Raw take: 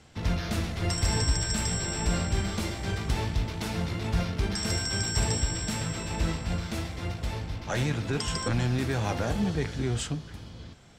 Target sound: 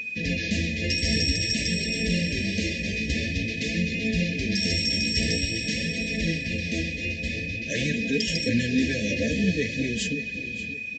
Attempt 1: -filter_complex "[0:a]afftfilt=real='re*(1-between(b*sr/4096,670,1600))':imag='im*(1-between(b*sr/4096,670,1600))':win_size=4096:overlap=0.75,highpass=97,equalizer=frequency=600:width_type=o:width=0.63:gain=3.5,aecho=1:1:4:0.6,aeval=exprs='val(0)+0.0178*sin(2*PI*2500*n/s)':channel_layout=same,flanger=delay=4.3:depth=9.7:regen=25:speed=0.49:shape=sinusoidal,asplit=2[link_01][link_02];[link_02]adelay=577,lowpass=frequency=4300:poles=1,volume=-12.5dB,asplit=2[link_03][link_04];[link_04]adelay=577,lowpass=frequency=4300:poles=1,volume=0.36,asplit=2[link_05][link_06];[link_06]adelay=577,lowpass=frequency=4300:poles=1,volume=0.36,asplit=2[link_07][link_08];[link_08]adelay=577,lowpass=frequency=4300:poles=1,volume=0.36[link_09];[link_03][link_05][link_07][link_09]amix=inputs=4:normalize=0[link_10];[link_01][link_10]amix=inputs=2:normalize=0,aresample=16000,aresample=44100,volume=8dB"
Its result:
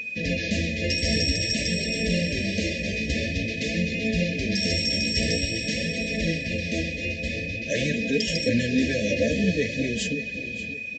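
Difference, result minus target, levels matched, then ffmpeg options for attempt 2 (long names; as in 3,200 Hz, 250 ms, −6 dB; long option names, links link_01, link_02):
500 Hz band +4.0 dB
-filter_complex "[0:a]afftfilt=real='re*(1-between(b*sr/4096,670,1600))':imag='im*(1-between(b*sr/4096,670,1600))':win_size=4096:overlap=0.75,highpass=97,equalizer=frequency=600:width_type=o:width=0.63:gain=-5.5,aecho=1:1:4:0.6,aeval=exprs='val(0)+0.0178*sin(2*PI*2500*n/s)':channel_layout=same,flanger=delay=4.3:depth=9.7:regen=25:speed=0.49:shape=sinusoidal,asplit=2[link_01][link_02];[link_02]adelay=577,lowpass=frequency=4300:poles=1,volume=-12.5dB,asplit=2[link_03][link_04];[link_04]adelay=577,lowpass=frequency=4300:poles=1,volume=0.36,asplit=2[link_05][link_06];[link_06]adelay=577,lowpass=frequency=4300:poles=1,volume=0.36,asplit=2[link_07][link_08];[link_08]adelay=577,lowpass=frequency=4300:poles=1,volume=0.36[link_09];[link_03][link_05][link_07][link_09]amix=inputs=4:normalize=0[link_10];[link_01][link_10]amix=inputs=2:normalize=0,aresample=16000,aresample=44100,volume=8dB"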